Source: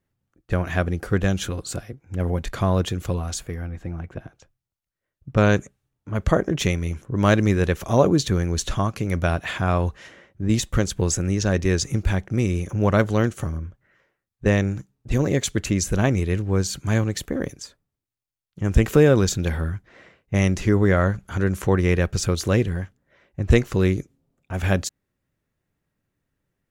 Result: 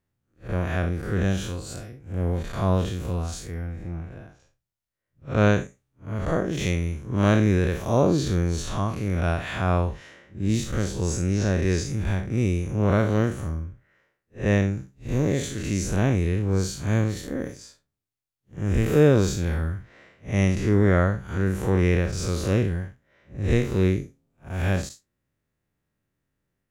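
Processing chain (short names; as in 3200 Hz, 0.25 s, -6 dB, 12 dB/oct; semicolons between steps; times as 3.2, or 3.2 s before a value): time blur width 0.124 s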